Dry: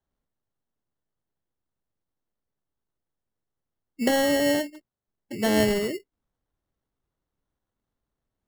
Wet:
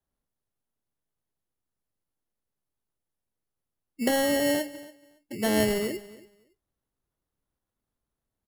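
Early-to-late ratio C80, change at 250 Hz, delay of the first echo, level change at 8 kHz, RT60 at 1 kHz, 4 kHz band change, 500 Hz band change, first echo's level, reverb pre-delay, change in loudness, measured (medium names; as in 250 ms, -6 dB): no reverb, -2.5 dB, 282 ms, 0.0 dB, no reverb, -2.5 dB, -2.5 dB, -19.0 dB, no reverb, -2.5 dB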